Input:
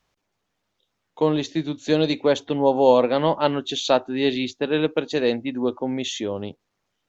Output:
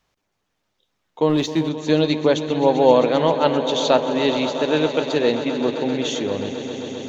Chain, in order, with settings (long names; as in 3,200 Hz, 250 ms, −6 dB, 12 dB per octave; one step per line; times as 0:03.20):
echo that builds up and dies away 131 ms, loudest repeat 5, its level −15 dB
0:01.29–0:01.69: leveller curve on the samples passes 1
level +1.5 dB